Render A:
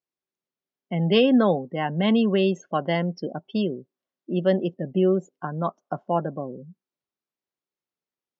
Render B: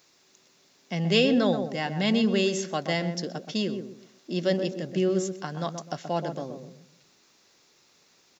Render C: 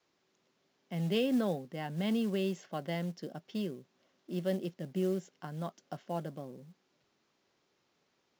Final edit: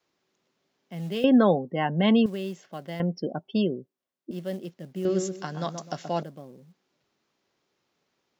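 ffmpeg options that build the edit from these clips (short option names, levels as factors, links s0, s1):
-filter_complex "[0:a]asplit=2[s0][s1];[2:a]asplit=4[s2][s3][s4][s5];[s2]atrim=end=1.242[s6];[s0]atrim=start=1.238:end=2.262[s7];[s3]atrim=start=2.258:end=3.002[s8];[s1]atrim=start=2.998:end=4.312[s9];[s4]atrim=start=4.308:end=5.052[s10];[1:a]atrim=start=5.048:end=6.232[s11];[s5]atrim=start=6.228[s12];[s6][s7]acrossfade=d=0.004:c1=hsin:c2=hsin[s13];[s13][s8]acrossfade=d=0.004:c1=hsin:c2=hsin[s14];[s14][s9]acrossfade=d=0.004:c1=hsin:c2=hsin[s15];[s15][s10]acrossfade=d=0.004:c1=hsin:c2=hsin[s16];[s16][s11]acrossfade=d=0.004:c1=hsin:c2=hsin[s17];[s17][s12]acrossfade=d=0.004:c1=hsin:c2=hsin"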